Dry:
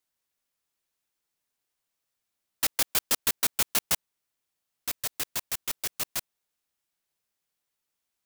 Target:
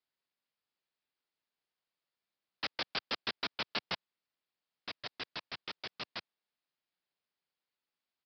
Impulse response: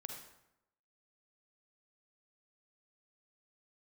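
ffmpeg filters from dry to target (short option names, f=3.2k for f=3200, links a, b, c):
-af "highpass=130,aresample=11025,acrusher=bits=2:mode=log:mix=0:aa=0.000001,aresample=44100,volume=-5dB"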